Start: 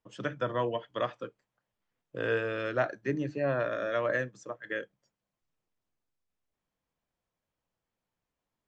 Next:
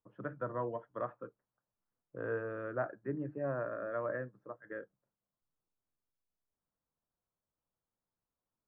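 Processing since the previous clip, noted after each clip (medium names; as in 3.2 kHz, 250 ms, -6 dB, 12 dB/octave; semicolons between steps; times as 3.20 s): Chebyshev low-pass 1.4 kHz, order 3; trim -6 dB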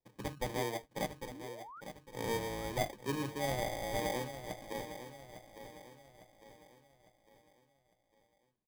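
sample-and-hold 32×; painted sound rise, 1.31–1.81 s, 230–1500 Hz -51 dBFS; on a send: feedback delay 854 ms, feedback 44%, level -11 dB; on the sum: trim +1 dB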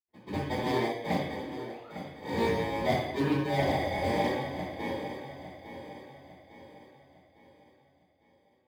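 median filter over 41 samples; reverberation, pre-delay 76 ms; loudspeaker Doppler distortion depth 0.11 ms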